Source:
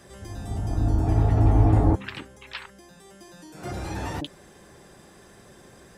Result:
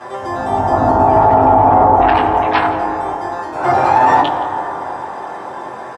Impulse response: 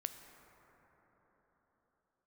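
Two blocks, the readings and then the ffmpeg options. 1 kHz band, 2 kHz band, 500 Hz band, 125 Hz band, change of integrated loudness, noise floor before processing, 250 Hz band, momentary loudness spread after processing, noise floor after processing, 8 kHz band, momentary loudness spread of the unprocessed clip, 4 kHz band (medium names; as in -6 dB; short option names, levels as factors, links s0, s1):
+26.0 dB, +18.0 dB, +19.0 dB, -1.5 dB, +10.5 dB, -52 dBFS, +9.0 dB, 16 LU, -29 dBFS, no reading, 20 LU, +11.0 dB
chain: -filter_complex "[0:a]bandpass=f=900:t=q:w=2.7:csg=0,asplit=2[s0][s1];[s1]adelay=23,volume=0.473[s2];[s0][s2]amix=inputs=2:normalize=0,aecho=1:1:171:0.141,asplit=2[s3][s4];[1:a]atrim=start_sample=2205,adelay=8[s5];[s4][s5]afir=irnorm=-1:irlink=0,volume=2.66[s6];[s3][s6]amix=inputs=2:normalize=0,alimiter=level_in=15.8:limit=0.891:release=50:level=0:latency=1,volume=0.891"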